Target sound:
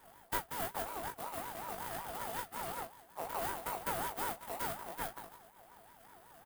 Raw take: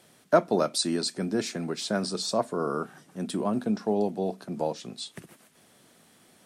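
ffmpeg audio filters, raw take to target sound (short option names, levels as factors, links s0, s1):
-filter_complex "[0:a]equalizer=f=130:w=0.52:g=-9,aecho=1:1:6.3:0.89,acompressor=threshold=0.0224:ratio=16,acrusher=samples=27:mix=1:aa=0.000001,asplit=3[s0][s1][s2];[s0]afade=t=out:st=0.88:d=0.02[s3];[s1]flanger=delay=15.5:depth=2.3:speed=1.3,afade=t=in:st=0.88:d=0.02,afade=t=out:st=3.31:d=0.02[s4];[s2]afade=t=in:st=3.31:d=0.02[s5];[s3][s4][s5]amix=inputs=3:normalize=0,afftfilt=real='hypot(re,im)*cos(2*PI*random(0))':imag='hypot(re,im)*sin(2*PI*random(1))':win_size=512:overlap=0.75,aeval=exprs='max(val(0),0)':c=same,aexciter=amount=4.2:drive=4.3:freq=8500,aecho=1:1:19|38:0.708|0.447,aeval=exprs='val(0)*sin(2*PI*820*n/s+820*0.2/5.4*sin(2*PI*5.4*n/s))':c=same,volume=2"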